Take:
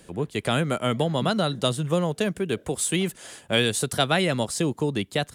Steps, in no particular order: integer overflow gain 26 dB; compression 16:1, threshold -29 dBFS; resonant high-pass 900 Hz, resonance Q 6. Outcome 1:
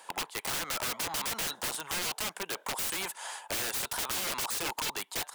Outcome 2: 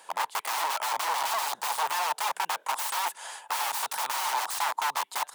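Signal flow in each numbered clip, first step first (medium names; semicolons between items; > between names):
resonant high-pass > integer overflow > compression; integer overflow > compression > resonant high-pass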